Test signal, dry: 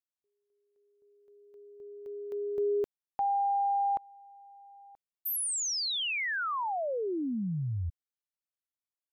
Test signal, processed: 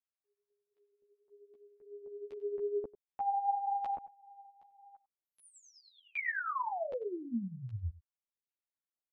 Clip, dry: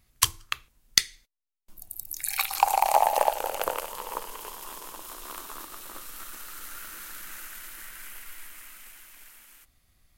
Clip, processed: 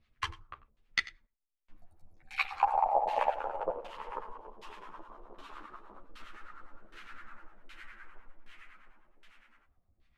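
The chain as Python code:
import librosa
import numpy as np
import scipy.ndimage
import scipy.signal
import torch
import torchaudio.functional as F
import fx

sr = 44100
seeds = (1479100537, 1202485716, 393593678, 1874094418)

y = fx.filter_lfo_lowpass(x, sr, shape='saw_down', hz=1.3, low_hz=490.0, high_hz=3400.0, q=1.4)
y = y + 10.0 ** (-18.5 / 20.0) * np.pad(y, (int(94 * sr / 1000.0), 0))[:len(y)]
y = fx.harmonic_tremolo(y, sr, hz=9.8, depth_pct=70, crossover_hz=810.0)
y = fx.ensemble(y, sr)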